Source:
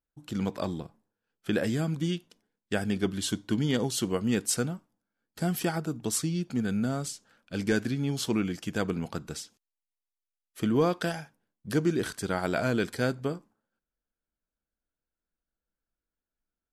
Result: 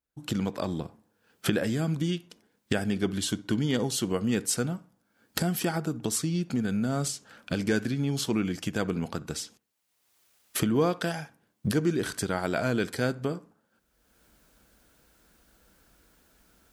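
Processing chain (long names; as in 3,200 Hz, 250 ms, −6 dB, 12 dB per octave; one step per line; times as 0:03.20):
camcorder AGC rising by 32 dB per second
high-pass filter 45 Hz
bucket-brigade delay 64 ms, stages 1,024, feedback 36%, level −21 dB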